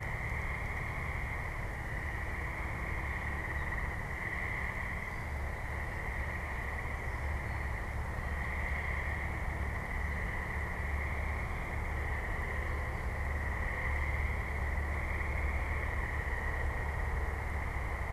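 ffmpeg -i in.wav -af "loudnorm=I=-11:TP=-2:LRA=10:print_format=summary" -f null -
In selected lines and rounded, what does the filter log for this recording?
Input Integrated:    -36.8 LUFS
Input True Peak:     -22.1 dBTP
Input LRA:             2.0 LU
Input Threshold:     -46.8 LUFS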